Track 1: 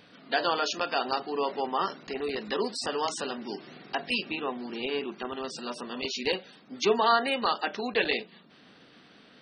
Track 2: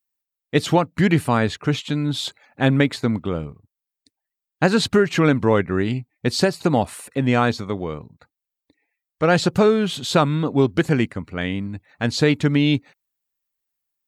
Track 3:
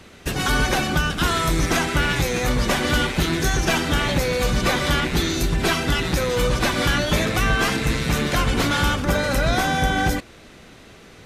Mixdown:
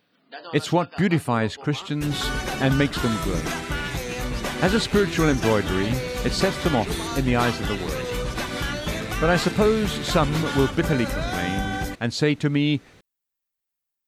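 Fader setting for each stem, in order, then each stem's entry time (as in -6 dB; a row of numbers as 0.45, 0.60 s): -12.0, -3.5, -7.5 dB; 0.00, 0.00, 1.75 s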